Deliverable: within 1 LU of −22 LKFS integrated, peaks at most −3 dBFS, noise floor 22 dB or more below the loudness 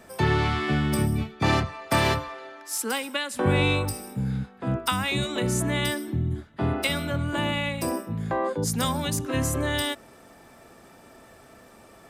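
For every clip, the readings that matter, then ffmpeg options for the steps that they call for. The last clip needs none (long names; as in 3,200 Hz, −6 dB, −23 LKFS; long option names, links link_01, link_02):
integrated loudness −26.0 LKFS; sample peak −9.5 dBFS; target loudness −22.0 LKFS
→ -af "volume=4dB"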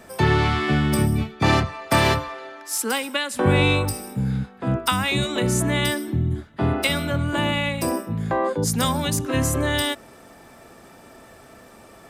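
integrated loudness −22.0 LKFS; sample peak −5.5 dBFS; background noise floor −48 dBFS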